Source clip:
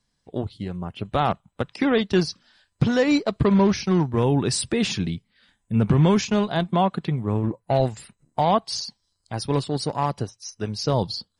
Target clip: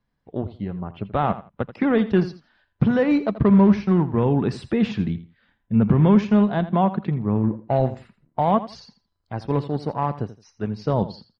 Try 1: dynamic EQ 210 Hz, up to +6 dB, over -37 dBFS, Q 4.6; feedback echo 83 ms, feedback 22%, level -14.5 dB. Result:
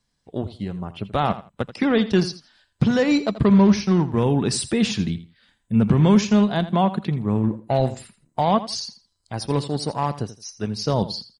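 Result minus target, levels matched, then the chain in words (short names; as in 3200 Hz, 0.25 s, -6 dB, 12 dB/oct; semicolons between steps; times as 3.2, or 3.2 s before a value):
2000 Hz band +2.5 dB
dynamic EQ 210 Hz, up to +6 dB, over -37 dBFS, Q 4.6; LPF 2000 Hz 12 dB/oct; feedback echo 83 ms, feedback 22%, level -14.5 dB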